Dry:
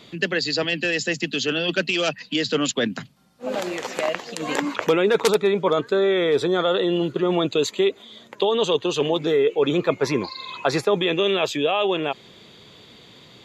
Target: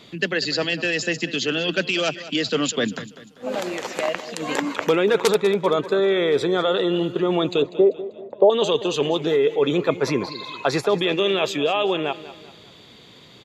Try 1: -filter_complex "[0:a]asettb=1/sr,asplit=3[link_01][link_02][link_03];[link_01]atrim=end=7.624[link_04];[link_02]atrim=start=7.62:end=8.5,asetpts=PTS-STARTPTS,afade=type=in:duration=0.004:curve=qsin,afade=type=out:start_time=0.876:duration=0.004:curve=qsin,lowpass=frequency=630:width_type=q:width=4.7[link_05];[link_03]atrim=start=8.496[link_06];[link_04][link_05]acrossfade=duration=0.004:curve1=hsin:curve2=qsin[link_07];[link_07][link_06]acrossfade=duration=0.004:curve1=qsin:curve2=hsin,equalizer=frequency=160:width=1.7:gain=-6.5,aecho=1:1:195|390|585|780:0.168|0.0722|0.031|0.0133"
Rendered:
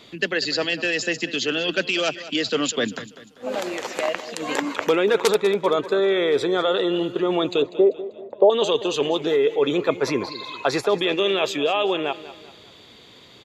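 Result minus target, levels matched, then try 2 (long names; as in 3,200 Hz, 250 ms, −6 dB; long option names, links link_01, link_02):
125 Hz band −5.0 dB
-filter_complex "[0:a]asettb=1/sr,asplit=3[link_01][link_02][link_03];[link_01]atrim=end=7.624[link_04];[link_02]atrim=start=7.62:end=8.5,asetpts=PTS-STARTPTS,afade=type=in:duration=0.004:curve=qsin,afade=type=out:start_time=0.876:duration=0.004:curve=qsin,lowpass=frequency=630:width_type=q:width=4.7[link_05];[link_03]atrim=start=8.496[link_06];[link_04][link_05]acrossfade=duration=0.004:curve1=hsin:curve2=qsin[link_07];[link_07][link_06]acrossfade=duration=0.004:curve1=qsin:curve2=hsin,aecho=1:1:195|390|585|780:0.168|0.0722|0.031|0.0133"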